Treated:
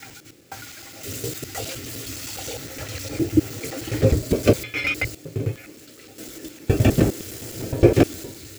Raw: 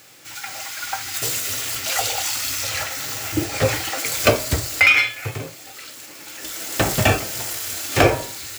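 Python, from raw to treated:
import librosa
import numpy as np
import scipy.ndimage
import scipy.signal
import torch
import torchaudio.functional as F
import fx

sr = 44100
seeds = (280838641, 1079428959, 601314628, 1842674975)

y = fx.block_reorder(x, sr, ms=103.0, group=5)
y = fx.low_shelf_res(y, sr, hz=570.0, db=13.0, q=1.5)
y = y * 10.0 ** (-9.5 / 20.0)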